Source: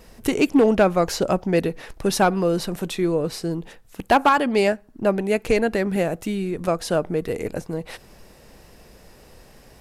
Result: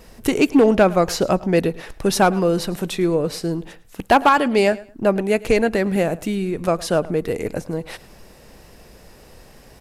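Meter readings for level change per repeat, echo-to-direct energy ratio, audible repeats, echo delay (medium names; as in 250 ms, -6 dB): -13.0 dB, -20.5 dB, 2, 107 ms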